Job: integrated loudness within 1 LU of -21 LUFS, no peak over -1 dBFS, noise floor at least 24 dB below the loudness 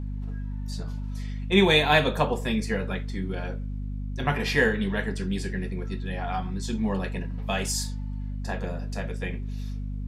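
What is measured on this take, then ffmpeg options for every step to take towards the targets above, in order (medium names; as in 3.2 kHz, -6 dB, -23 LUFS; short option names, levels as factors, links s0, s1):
hum 50 Hz; highest harmonic 250 Hz; hum level -29 dBFS; loudness -27.5 LUFS; peak level -5.0 dBFS; loudness target -21.0 LUFS
-> -af "bandreject=f=50:t=h:w=6,bandreject=f=100:t=h:w=6,bandreject=f=150:t=h:w=6,bandreject=f=200:t=h:w=6,bandreject=f=250:t=h:w=6"
-af "volume=2.11,alimiter=limit=0.891:level=0:latency=1"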